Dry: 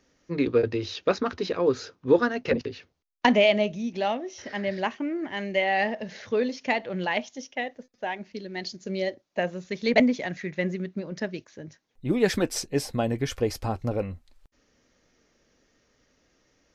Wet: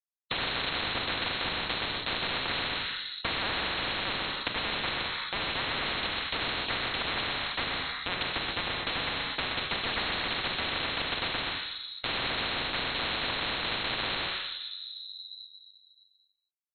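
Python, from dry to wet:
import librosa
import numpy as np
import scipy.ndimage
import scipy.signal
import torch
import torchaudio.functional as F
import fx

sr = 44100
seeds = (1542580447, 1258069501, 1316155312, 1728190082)

y = fx.dereverb_blind(x, sr, rt60_s=0.61)
y = scipy.signal.sosfilt(scipy.signal.ellip(3, 1.0, 40, [220.0, 2100.0], 'bandstop', fs=sr, output='sos'), y)
y = fx.hum_notches(y, sr, base_hz=60, count=5)
y = fx.rotary_switch(y, sr, hz=8.0, then_hz=0.75, switch_at_s=10.14)
y = fx.quant_dither(y, sr, seeds[0], bits=6, dither='none')
y = y + 10.0 ** (-9.5 / 20.0) * np.pad(y, (int(126 * sr / 1000.0), 0))[:len(y)]
y = fx.room_shoebox(y, sr, seeds[1], volume_m3=730.0, walls='mixed', distance_m=1.5)
y = fx.freq_invert(y, sr, carrier_hz=4000)
y = fx.spectral_comp(y, sr, ratio=10.0)
y = y * librosa.db_to_amplitude(-2.5)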